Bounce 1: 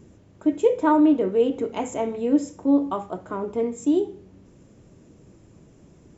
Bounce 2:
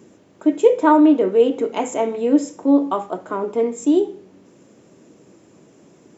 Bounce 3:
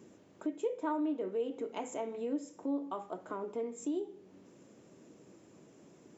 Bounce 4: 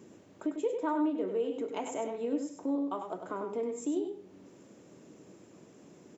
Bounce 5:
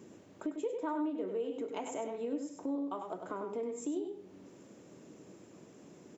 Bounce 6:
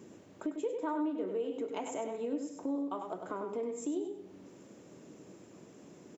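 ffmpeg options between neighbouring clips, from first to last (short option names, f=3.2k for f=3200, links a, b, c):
-af "highpass=250,volume=6dB"
-af "acompressor=threshold=-33dB:ratio=2,volume=-8.5dB"
-af "aecho=1:1:99:0.473,volume=2.5dB"
-af "acompressor=threshold=-40dB:ratio=1.5"
-af "aecho=1:1:226:0.0944,volume=1dB"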